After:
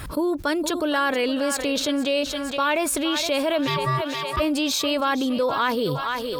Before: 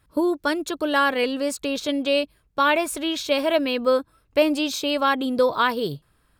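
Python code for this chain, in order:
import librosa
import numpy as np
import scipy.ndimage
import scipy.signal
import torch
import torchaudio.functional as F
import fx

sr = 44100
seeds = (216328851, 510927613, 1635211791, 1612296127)

y = fx.ring_mod(x, sr, carrier_hz=650.0, at=(3.66, 4.39), fade=0.02)
y = fx.echo_thinned(y, sr, ms=466, feedback_pct=38, hz=470.0, wet_db=-13.5)
y = fx.env_flatten(y, sr, amount_pct=70)
y = y * 10.0 ** (-5.0 / 20.0)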